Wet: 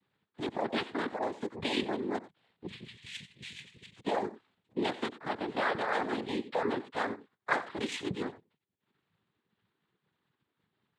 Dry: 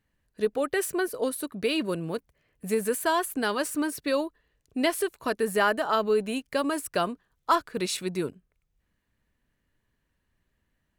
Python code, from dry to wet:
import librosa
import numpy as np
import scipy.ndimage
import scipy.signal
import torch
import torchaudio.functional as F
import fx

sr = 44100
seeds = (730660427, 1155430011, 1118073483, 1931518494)

p1 = fx.median_filter(x, sr, points=9, at=(5.06, 6.08))
p2 = fx.lpc_monotone(p1, sr, seeds[0], pitch_hz=280.0, order=16)
p3 = fx.over_compress(p2, sr, threshold_db=-30.0, ratio=-1.0)
p4 = p2 + (p3 * 10.0 ** (-0.5 / 20.0))
p5 = fx.brickwall_bandstop(p4, sr, low_hz=220.0, high_hz=2100.0, at=(2.66, 3.96))
p6 = p5 + fx.echo_single(p5, sr, ms=92, db=-16.5, dry=0)
p7 = fx.noise_vocoder(p6, sr, seeds[1], bands=6)
y = p7 * 10.0 ** (-8.0 / 20.0)